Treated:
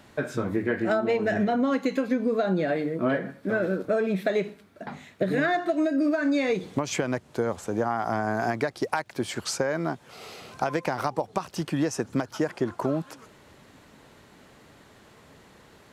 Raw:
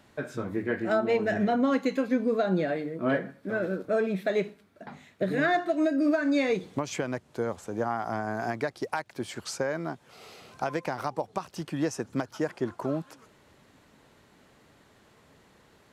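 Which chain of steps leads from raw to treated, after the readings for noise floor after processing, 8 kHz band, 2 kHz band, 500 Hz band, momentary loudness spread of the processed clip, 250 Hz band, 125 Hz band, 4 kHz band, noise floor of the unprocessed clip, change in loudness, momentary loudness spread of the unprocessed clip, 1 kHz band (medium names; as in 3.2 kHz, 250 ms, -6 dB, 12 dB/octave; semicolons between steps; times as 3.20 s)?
-55 dBFS, +5.5 dB, +2.0 dB, +2.0 dB, 8 LU, +2.0 dB, +3.5 dB, +3.5 dB, -61 dBFS, +2.0 dB, 11 LU, +2.5 dB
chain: compression, threshold -27 dBFS, peak gain reduction 7 dB; trim +6 dB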